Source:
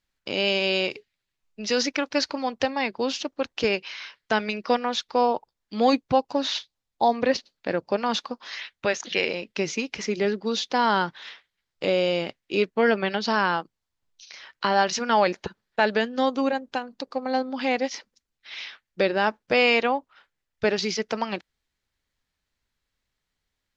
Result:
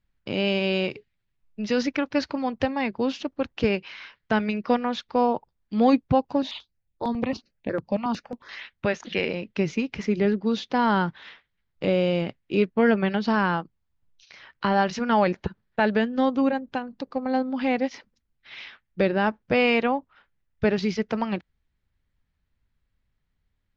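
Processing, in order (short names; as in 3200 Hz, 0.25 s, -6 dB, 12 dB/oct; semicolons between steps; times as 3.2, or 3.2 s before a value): tone controls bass +12 dB, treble -12 dB; 6.42–8.49 step phaser 11 Hz 360–4900 Hz; gain -1.5 dB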